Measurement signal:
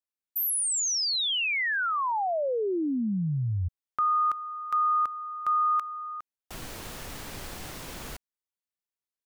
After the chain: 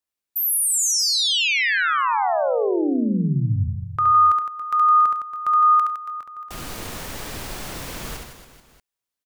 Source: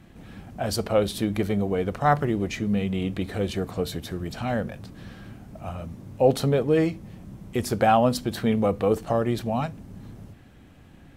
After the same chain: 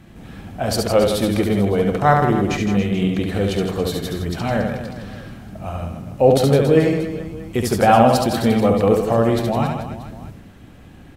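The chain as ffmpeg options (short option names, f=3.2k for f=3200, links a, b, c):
-af "aecho=1:1:70|161|279.3|433.1|633:0.631|0.398|0.251|0.158|0.1,volume=5dB"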